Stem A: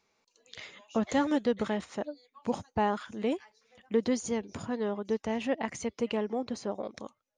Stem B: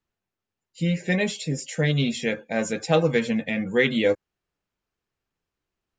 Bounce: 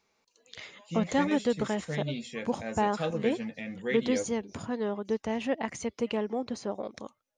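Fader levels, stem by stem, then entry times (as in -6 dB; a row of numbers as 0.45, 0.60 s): +0.5, -12.0 dB; 0.00, 0.10 s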